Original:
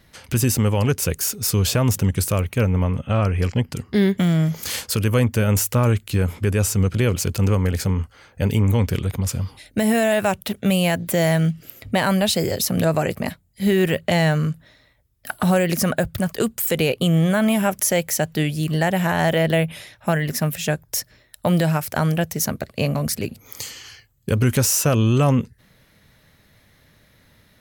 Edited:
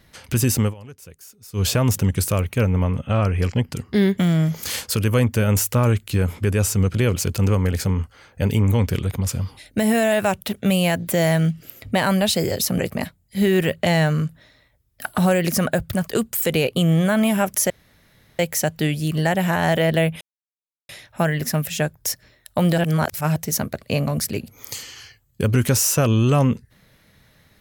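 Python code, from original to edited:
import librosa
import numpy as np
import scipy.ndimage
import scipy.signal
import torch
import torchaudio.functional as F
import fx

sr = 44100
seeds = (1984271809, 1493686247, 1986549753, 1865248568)

y = fx.edit(x, sr, fx.fade_down_up(start_s=0.61, length_s=1.05, db=-21.0, fade_s=0.13, curve='qsin'),
    fx.cut(start_s=12.79, length_s=0.25),
    fx.insert_room_tone(at_s=17.95, length_s=0.69),
    fx.insert_silence(at_s=19.77, length_s=0.68),
    fx.reverse_span(start_s=21.66, length_s=0.58), tone=tone)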